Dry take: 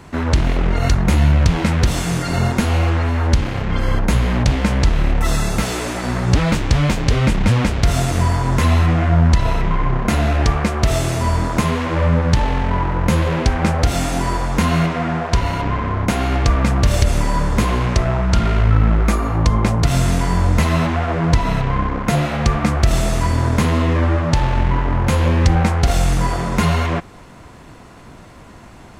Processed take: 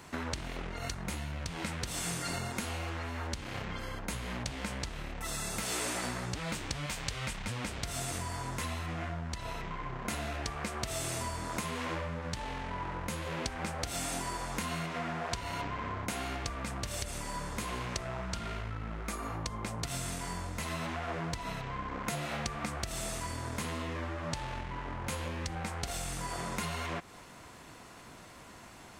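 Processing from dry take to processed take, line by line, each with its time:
0:06.86–0:07.47: parametric band 290 Hz −9.5 dB 1.7 octaves
whole clip: dynamic equaliser 8,500 Hz, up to +5 dB, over −49 dBFS, Q 5.2; downward compressor 5 to 1, threshold −22 dBFS; spectral tilt +2 dB per octave; level −8.5 dB

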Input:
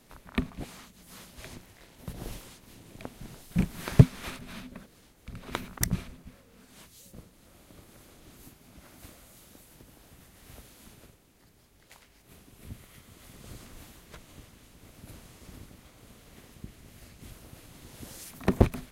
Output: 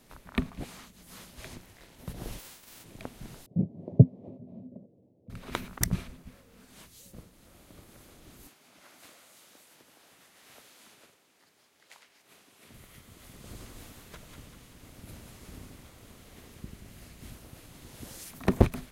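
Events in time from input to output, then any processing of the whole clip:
0:02.38–0:02.83: spectral envelope flattened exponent 0.3
0:03.46–0:05.30: elliptic band-pass filter 100–610 Hz
0:08.47–0:12.74: meter weighting curve A
0:13.36–0:17.37: echo with a time of its own for lows and highs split 950 Hz, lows 90 ms, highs 193 ms, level −5.5 dB

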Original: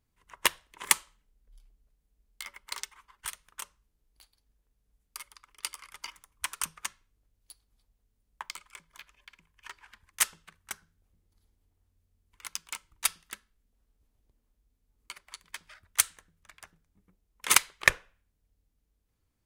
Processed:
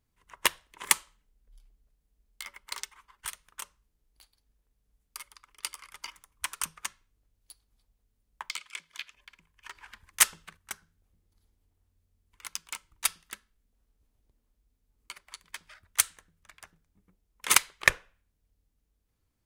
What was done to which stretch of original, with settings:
0:08.50–0:09.14: meter weighting curve D
0:09.75–0:10.57: clip gain +5 dB

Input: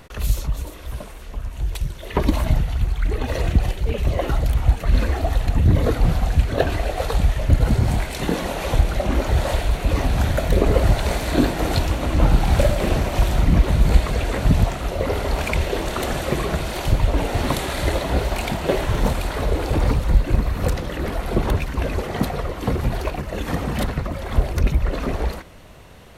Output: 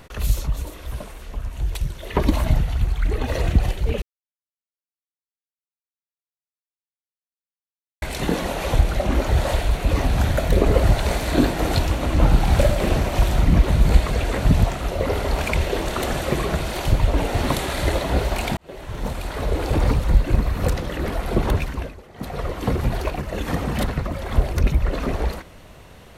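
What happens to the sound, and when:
0:04.02–0:08.02: silence
0:18.57–0:19.70: fade in
0:21.65–0:22.46: duck −18 dB, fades 0.30 s

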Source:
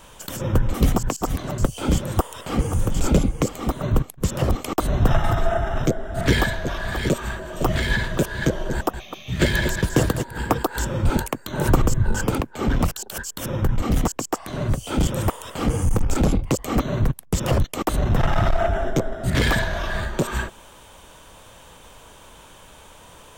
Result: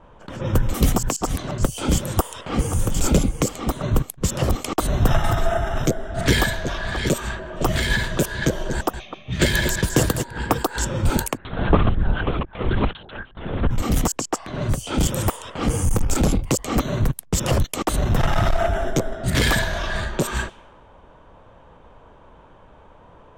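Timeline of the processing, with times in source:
0:11.37–0:13.71: linear-prediction vocoder at 8 kHz whisper
whole clip: low-pass that shuts in the quiet parts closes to 950 Hz, open at −18 dBFS; high-shelf EQ 3,800 Hz +7.5 dB

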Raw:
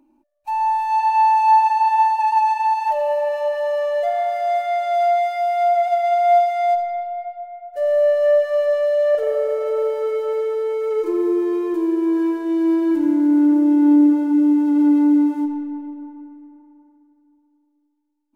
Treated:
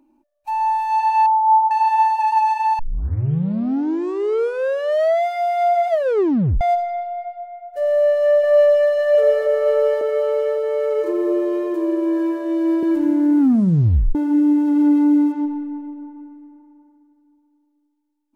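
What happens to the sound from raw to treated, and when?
0:01.26–0:01.71: expanding power law on the bin magnitudes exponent 3.5
0:02.79: tape start 2.46 s
0:05.89: tape stop 0.72 s
0:07.88–0:08.91: delay throw 550 ms, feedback 70%, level −2.5 dB
0:10.01–0:12.83: elliptic high-pass filter 250 Hz
0:13.39: tape stop 0.76 s
0:15.32–0:16.16: high-frequency loss of the air 100 metres

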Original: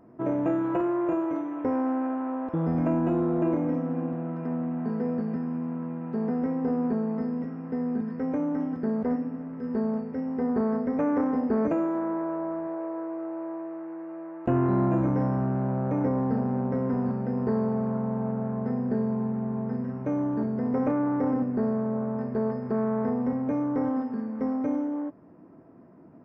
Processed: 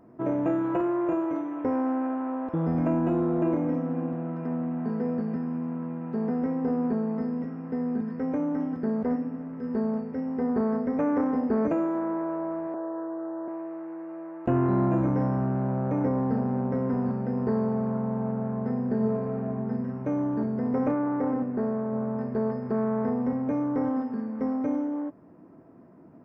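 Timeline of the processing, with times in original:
0:12.74–0:13.48: Butterworth low-pass 1,900 Hz 96 dB per octave
0:18.96–0:19.47: thrown reverb, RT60 0.88 s, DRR −0.5 dB
0:20.94–0:21.93: bass and treble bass −4 dB, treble −7 dB

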